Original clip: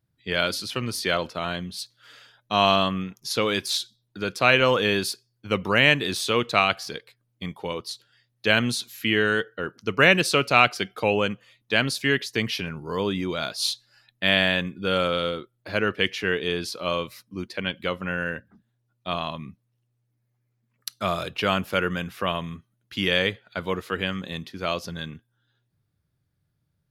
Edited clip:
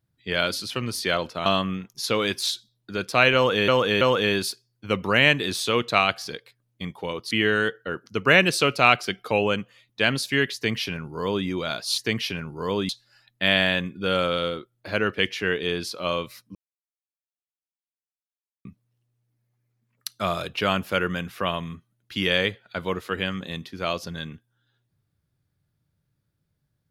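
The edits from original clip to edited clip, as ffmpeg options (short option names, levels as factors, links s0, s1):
-filter_complex "[0:a]asplit=9[s0][s1][s2][s3][s4][s5][s6][s7][s8];[s0]atrim=end=1.462[s9];[s1]atrim=start=2.728:end=4.952[s10];[s2]atrim=start=4.618:end=4.952[s11];[s3]atrim=start=4.618:end=7.922[s12];[s4]atrim=start=9.028:end=13.702[s13];[s5]atrim=start=12.268:end=13.182[s14];[s6]atrim=start=13.698:end=17.36,asetpts=PTS-STARTPTS,afade=t=out:st=3.658:d=0.004:c=hsin[s15];[s7]atrim=start=17.36:end=19.46,asetpts=PTS-STARTPTS,volume=0[s16];[s8]atrim=start=19.46,asetpts=PTS-STARTPTS,afade=t=in:d=0.004:c=hsin[s17];[s9][s10]acrossfade=d=0.004:c1=hsin:c2=hsin[s18];[s18][s11]acrossfade=d=0.004:c1=hsin:c2=hsin[s19];[s19][s12]acrossfade=d=0.004:c1=hsin:c2=hsin[s20];[s20][s13]acrossfade=d=0.004:c1=hsin:c2=hsin[s21];[s21][s14]acrossfade=d=0.004:c1=hsin:c2=hsin[s22];[s15][s16][s17]concat=n=3:v=0:a=1[s23];[s22][s23]acrossfade=d=0.004:c1=hsin:c2=hsin"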